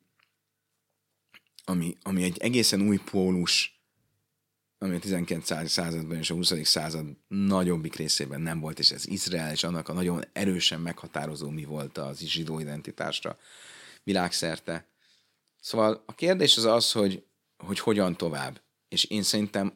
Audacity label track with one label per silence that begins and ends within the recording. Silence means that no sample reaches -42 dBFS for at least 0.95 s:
3.680000	4.820000	silence